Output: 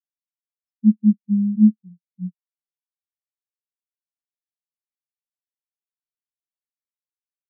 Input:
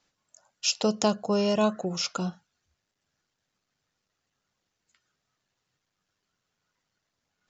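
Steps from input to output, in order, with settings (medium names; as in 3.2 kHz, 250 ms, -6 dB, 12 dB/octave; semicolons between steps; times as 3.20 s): resonant low shelf 370 Hz +12 dB, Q 1.5; spectral contrast expander 4:1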